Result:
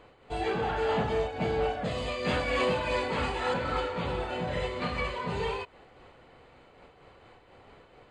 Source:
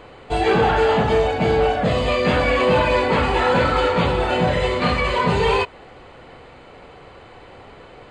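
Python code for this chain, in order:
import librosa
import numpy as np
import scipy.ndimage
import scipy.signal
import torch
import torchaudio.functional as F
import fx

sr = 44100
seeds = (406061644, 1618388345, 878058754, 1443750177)

y = fx.high_shelf(x, sr, hz=3800.0, db=7.5, at=(1.84, 3.54))
y = fx.am_noise(y, sr, seeds[0], hz=5.7, depth_pct=65)
y = y * 10.0 ** (-9.0 / 20.0)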